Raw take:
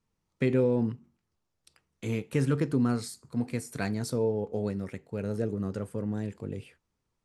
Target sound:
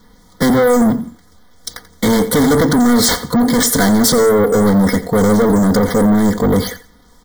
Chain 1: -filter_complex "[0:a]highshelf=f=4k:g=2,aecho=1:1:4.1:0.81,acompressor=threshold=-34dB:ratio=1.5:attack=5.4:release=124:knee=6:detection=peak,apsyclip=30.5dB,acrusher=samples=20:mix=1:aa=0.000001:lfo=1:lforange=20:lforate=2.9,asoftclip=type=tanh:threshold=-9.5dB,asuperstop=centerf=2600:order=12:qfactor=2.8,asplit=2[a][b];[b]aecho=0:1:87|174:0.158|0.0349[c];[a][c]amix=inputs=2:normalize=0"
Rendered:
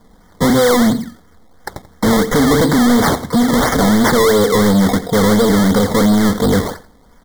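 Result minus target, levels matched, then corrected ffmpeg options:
decimation with a swept rate: distortion +10 dB
-filter_complex "[0:a]highshelf=f=4k:g=2,aecho=1:1:4.1:0.81,acompressor=threshold=-34dB:ratio=1.5:attack=5.4:release=124:knee=6:detection=peak,apsyclip=30.5dB,acrusher=samples=4:mix=1:aa=0.000001:lfo=1:lforange=4:lforate=2.9,asoftclip=type=tanh:threshold=-9.5dB,asuperstop=centerf=2600:order=12:qfactor=2.8,asplit=2[a][b];[b]aecho=0:1:87|174:0.158|0.0349[c];[a][c]amix=inputs=2:normalize=0"

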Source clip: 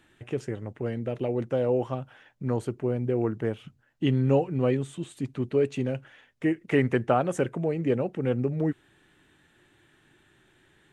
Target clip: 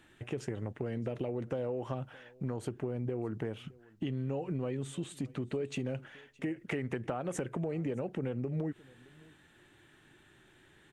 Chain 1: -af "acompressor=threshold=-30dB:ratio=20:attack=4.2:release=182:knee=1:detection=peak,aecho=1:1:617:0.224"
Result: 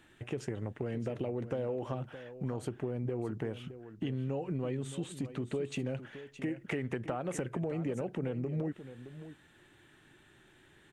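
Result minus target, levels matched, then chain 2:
echo-to-direct +11 dB
-af "acompressor=threshold=-30dB:ratio=20:attack=4.2:release=182:knee=1:detection=peak,aecho=1:1:617:0.0631"

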